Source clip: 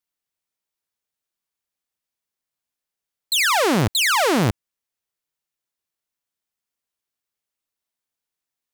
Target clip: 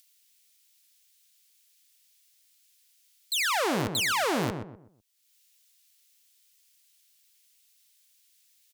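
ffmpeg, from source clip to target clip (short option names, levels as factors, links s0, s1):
-filter_complex "[0:a]equalizer=f=64:w=0.56:g=-8.5,acrossover=split=2300[s0][s1];[s1]acompressor=mode=upward:threshold=0.0251:ratio=2.5[s2];[s0][s2]amix=inputs=2:normalize=0,asplit=2[s3][s4];[s4]adelay=125,lowpass=f=1200:p=1,volume=0.501,asplit=2[s5][s6];[s6]adelay=125,lowpass=f=1200:p=1,volume=0.34,asplit=2[s7][s8];[s8]adelay=125,lowpass=f=1200:p=1,volume=0.34,asplit=2[s9][s10];[s10]adelay=125,lowpass=f=1200:p=1,volume=0.34[s11];[s3][s5][s7][s9][s11]amix=inputs=5:normalize=0,volume=0.376"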